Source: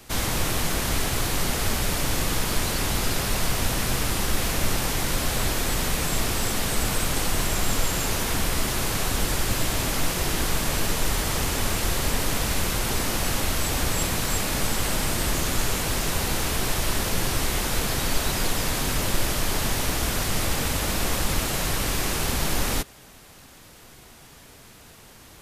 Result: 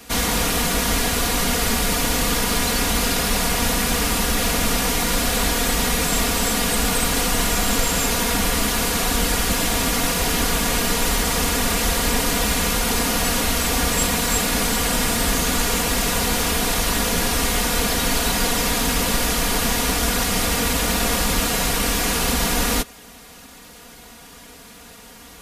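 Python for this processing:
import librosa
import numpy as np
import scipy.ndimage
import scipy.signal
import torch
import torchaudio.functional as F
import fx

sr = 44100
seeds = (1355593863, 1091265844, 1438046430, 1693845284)

y = fx.highpass(x, sr, hz=45.0, slope=6)
y = y + 0.74 * np.pad(y, (int(4.2 * sr / 1000.0), 0))[:len(y)]
y = y * librosa.db_to_amplitude(4.0)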